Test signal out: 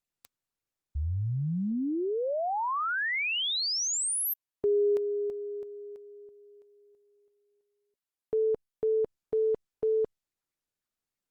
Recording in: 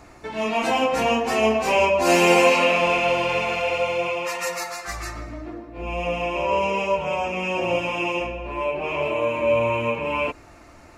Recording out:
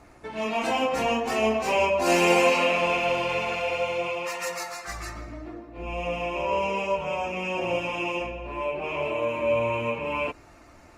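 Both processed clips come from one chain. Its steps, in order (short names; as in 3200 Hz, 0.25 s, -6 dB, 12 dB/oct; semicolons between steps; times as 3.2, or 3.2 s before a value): gain -4 dB; Opus 32 kbps 48000 Hz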